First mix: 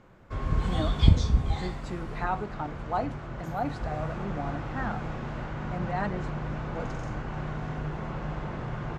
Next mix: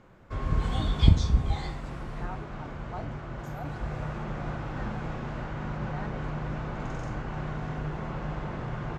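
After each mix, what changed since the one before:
speech -11.5 dB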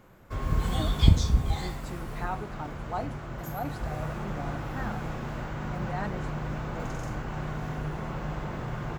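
speech +7.0 dB; master: remove air absorption 82 m

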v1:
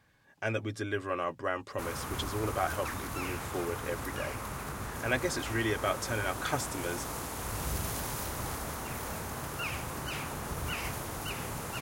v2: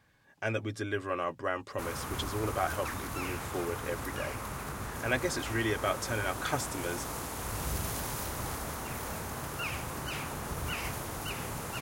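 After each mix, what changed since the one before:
none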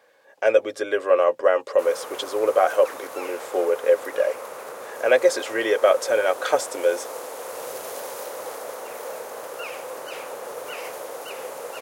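speech +6.5 dB; master: add resonant high-pass 510 Hz, resonance Q 5.6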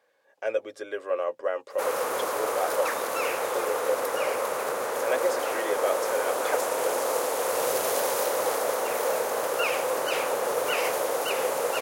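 speech -10.0 dB; background +7.5 dB

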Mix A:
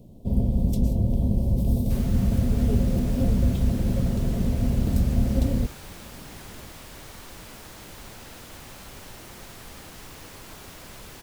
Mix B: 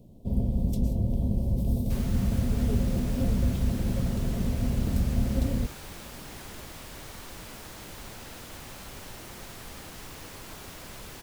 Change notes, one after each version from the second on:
first sound -4.0 dB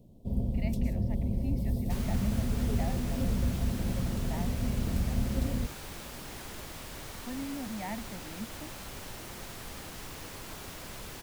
speech: unmuted; first sound -4.0 dB

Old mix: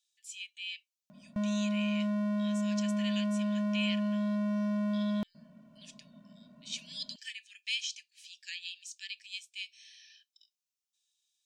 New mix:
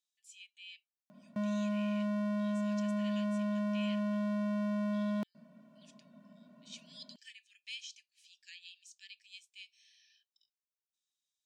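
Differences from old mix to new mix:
speech -10.5 dB; master: add HPF 200 Hz 12 dB/oct

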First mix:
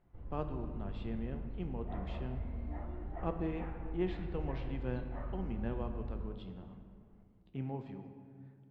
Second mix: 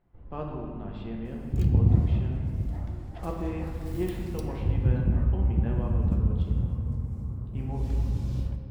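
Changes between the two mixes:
speech: send +9.0 dB; second sound: unmuted

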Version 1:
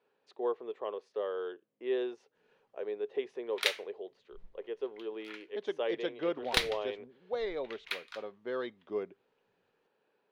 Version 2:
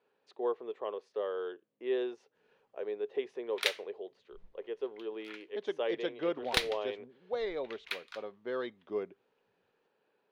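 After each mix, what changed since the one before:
background: send -8.0 dB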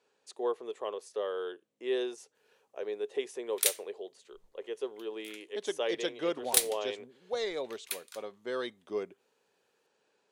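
background -9.5 dB; master: remove air absorption 300 m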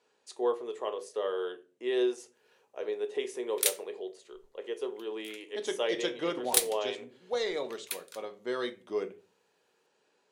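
speech: send on

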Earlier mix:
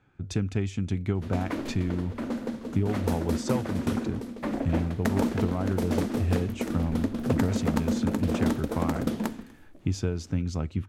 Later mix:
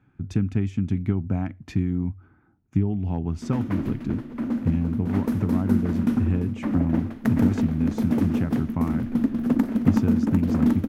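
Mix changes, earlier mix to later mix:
background: entry +2.20 s; master: add ten-band EQ 125 Hz +4 dB, 250 Hz +7 dB, 500 Hz -6 dB, 4000 Hz -6 dB, 8000 Hz -8 dB

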